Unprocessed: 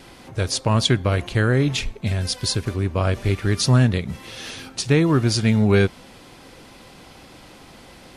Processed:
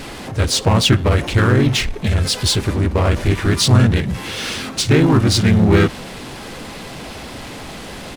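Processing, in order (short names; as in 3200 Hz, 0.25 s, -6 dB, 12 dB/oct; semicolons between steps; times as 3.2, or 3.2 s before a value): harmoniser -4 st -7 dB, -3 st -3 dB; power-law curve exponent 0.7; gain -1 dB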